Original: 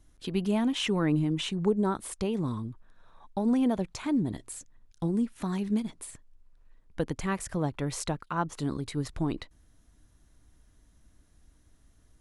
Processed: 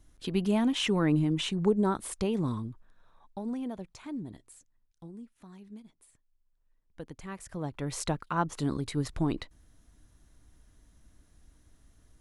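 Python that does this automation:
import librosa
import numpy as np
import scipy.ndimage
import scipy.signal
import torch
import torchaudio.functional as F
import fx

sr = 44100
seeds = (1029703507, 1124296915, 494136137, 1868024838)

y = fx.gain(x, sr, db=fx.line((2.5, 0.5), (3.63, -10.5), (4.24, -10.5), (5.33, -19.0), (6.0, -19.0), (7.29, -11.0), (8.11, 1.0)))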